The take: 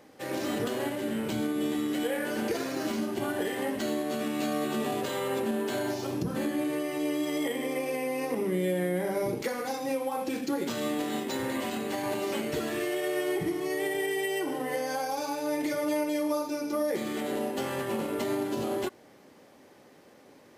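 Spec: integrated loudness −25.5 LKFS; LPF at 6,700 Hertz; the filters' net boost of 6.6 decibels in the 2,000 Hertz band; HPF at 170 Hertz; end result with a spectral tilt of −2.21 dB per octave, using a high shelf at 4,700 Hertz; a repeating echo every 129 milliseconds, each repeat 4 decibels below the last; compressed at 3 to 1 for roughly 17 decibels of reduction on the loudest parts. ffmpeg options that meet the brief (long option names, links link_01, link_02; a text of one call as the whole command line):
ffmpeg -i in.wav -af "highpass=170,lowpass=6700,equalizer=frequency=2000:width_type=o:gain=7,highshelf=frequency=4700:gain=4,acompressor=threshold=-49dB:ratio=3,aecho=1:1:129|258|387|516|645|774|903|1032|1161:0.631|0.398|0.25|0.158|0.0994|0.0626|0.0394|0.0249|0.0157,volume=18.5dB" out.wav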